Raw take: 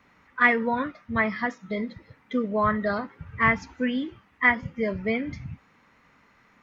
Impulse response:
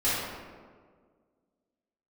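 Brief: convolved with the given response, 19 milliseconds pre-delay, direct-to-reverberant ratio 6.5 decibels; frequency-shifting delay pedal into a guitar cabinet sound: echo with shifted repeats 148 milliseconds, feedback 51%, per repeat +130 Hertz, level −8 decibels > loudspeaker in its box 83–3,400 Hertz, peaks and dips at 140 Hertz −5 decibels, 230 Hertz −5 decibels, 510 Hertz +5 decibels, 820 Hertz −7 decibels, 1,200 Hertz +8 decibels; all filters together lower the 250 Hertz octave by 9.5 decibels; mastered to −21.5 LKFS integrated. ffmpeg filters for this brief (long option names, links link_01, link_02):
-filter_complex "[0:a]equalizer=frequency=250:width_type=o:gain=-6.5,asplit=2[link_01][link_02];[1:a]atrim=start_sample=2205,adelay=19[link_03];[link_02][link_03]afir=irnorm=-1:irlink=0,volume=-19dB[link_04];[link_01][link_04]amix=inputs=2:normalize=0,asplit=7[link_05][link_06][link_07][link_08][link_09][link_10][link_11];[link_06]adelay=148,afreqshift=130,volume=-8dB[link_12];[link_07]adelay=296,afreqshift=260,volume=-13.8dB[link_13];[link_08]adelay=444,afreqshift=390,volume=-19.7dB[link_14];[link_09]adelay=592,afreqshift=520,volume=-25.5dB[link_15];[link_10]adelay=740,afreqshift=650,volume=-31.4dB[link_16];[link_11]adelay=888,afreqshift=780,volume=-37.2dB[link_17];[link_05][link_12][link_13][link_14][link_15][link_16][link_17]amix=inputs=7:normalize=0,highpass=83,equalizer=frequency=140:width_type=q:width=4:gain=-5,equalizer=frequency=230:width_type=q:width=4:gain=-5,equalizer=frequency=510:width_type=q:width=4:gain=5,equalizer=frequency=820:width_type=q:width=4:gain=-7,equalizer=frequency=1200:width_type=q:width=4:gain=8,lowpass=frequency=3400:width=0.5412,lowpass=frequency=3400:width=1.3066,volume=2dB"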